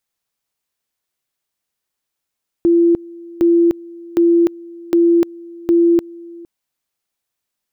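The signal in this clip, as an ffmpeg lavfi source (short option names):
-f lavfi -i "aevalsrc='pow(10,(-8.5-23*gte(mod(t,0.76),0.3))/20)*sin(2*PI*340*t)':d=3.8:s=44100"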